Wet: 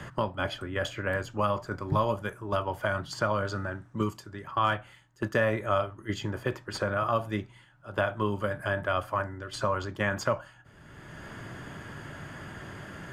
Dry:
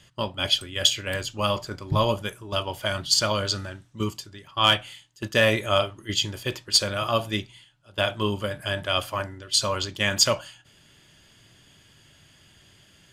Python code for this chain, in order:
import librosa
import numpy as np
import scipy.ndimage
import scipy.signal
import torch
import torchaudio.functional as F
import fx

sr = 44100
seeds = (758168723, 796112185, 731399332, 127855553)

y = fx.high_shelf_res(x, sr, hz=2200.0, db=-13.0, q=1.5)
y = fx.band_squash(y, sr, depth_pct=70)
y = F.gain(torch.from_numpy(y), -2.5).numpy()